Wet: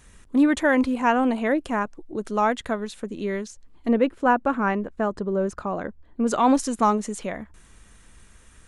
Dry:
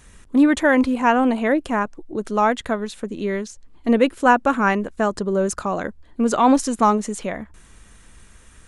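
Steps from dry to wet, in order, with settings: 3.88–6.27 LPF 1600 Hz 6 dB/oct; gain -3.5 dB

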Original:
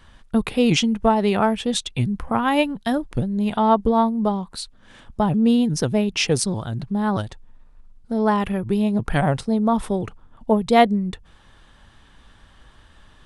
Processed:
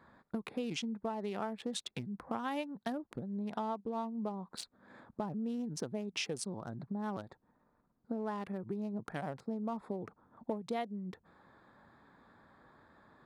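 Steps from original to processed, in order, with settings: Wiener smoothing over 15 samples; compressor 12:1, threshold -30 dBFS, peak gain reduction 21 dB; HPF 190 Hz 12 dB/oct; gain -3.5 dB

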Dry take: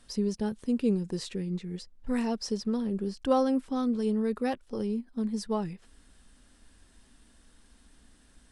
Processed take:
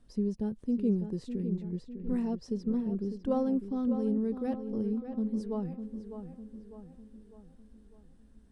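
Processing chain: tilt shelf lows +8.5 dB, about 760 Hz; on a send: darkening echo 0.602 s, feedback 50%, low-pass 3200 Hz, level -9 dB; on the sum: gain -8.5 dB

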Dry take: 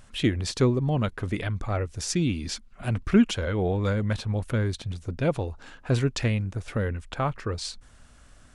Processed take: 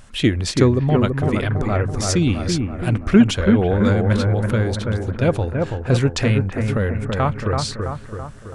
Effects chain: analogue delay 0.331 s, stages 4096, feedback 55%, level -4 dB; gain +6.5 dB

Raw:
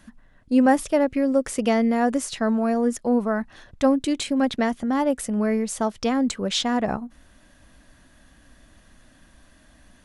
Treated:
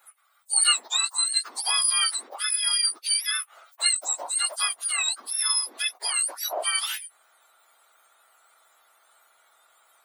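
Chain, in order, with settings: spectrum mirrored in octaves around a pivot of 1500 Hz; HPF 780 Hz 24 dB/oct; gain +1.5 dB

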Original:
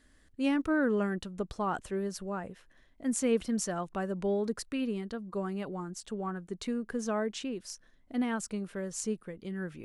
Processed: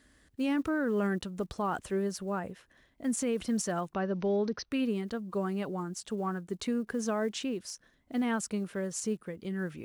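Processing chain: block floating point 7-bit; HPF 51 Hz; limiter -25.5 dBFS, peak gain reduction 8.5 dB; 3.94–4.72 brick-wall FIR low-pass 6300 Hz; gain +2.5 dB

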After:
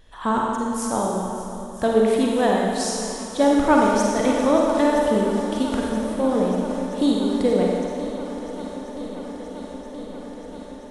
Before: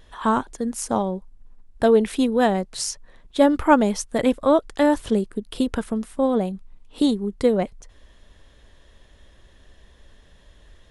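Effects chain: swung echo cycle 0.975 s, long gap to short 1.5:1, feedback 73%, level -15 dB; Schroeder reverb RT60 2 s, DRR -2 dB; gain -3 dB

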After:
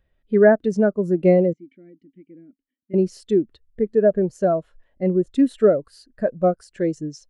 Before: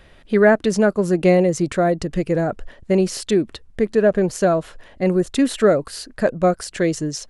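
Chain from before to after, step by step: 1.53–2.94 vowel filter i; spectral expander 1.5:1

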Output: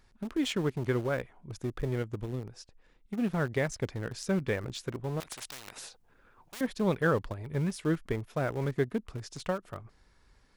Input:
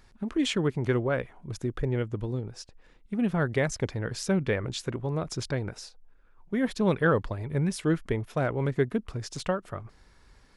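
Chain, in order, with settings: in parallel at -9 dB: sample gate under -27 dBFS; 5.2–6.61 on the sum: spectral compressor 10:1; gain -6 dB

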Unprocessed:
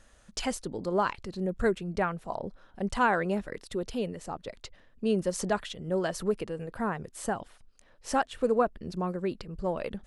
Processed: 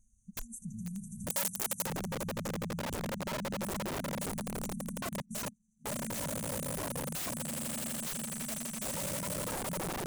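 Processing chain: 2.41–2.99 resonator 180 Hz, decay 0.29 s, harmonics all, mix 80%; compressor 16:1, threshold -37 dBFS, peak gain reduction 18.5 dB; swelling echo 83 ms, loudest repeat 8, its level -7.5 dB; 5.08–5.86 step gate "x.xx...." 164 bpm -24 dB; spectral noise reduction 15 dB; FFT band-reject 240–5800 Hz; wrapped overs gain 39 dB; 1.3–1.86 tilt +3 dB/oct; gain +7 dB

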